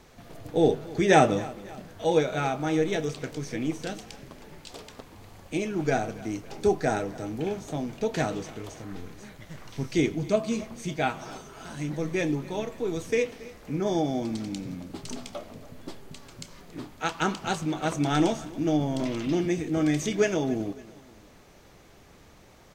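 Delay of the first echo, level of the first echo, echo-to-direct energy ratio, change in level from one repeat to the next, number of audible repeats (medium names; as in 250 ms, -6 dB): 278 ms, -20.0 dB, -19.0 dB, -6.5 dB, 2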